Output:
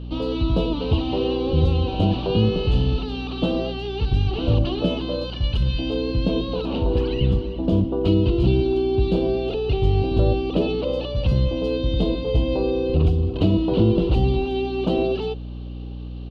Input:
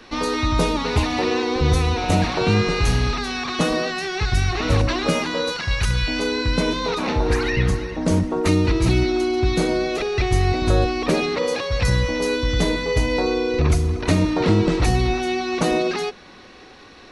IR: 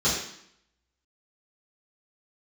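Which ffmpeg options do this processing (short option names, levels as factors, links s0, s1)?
-af "firequalizer=gain_entry='entry(390,0);entry(1900,-26);entry(2800,1);entry(6100,-30)':delay=0.05:min_phase=1,asetrate=46305,aresample=44100,aeval=exprs='val(0)+0.0282*(sin(2*PI*60*n/s)+sin(2*PI*2*60*n/s)/2+sin(2*PI*3*60*n/s)/3+sin(2*PI*4*60*n/s)/4+sin(2*PI*5*60*n/s)/5)':c=same"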